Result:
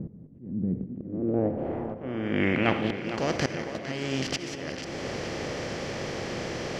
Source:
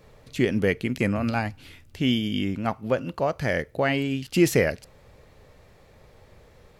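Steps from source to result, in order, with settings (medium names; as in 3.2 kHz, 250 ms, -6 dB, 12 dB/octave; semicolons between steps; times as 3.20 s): spectral levelling over time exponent 0.4; wow and flutter 15 cents; low-pass sweep 200 Hz -> 5.4 kHz, 0.79–3.18 s; slow attack 539 ms; tape echo 455 ms, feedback 67%, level -10 dB, low-pass 5.1 kHz; reverberation RT60 1.0 s, pre-delay 59 ms, DRR 11.5 dB; trim -5.5 dB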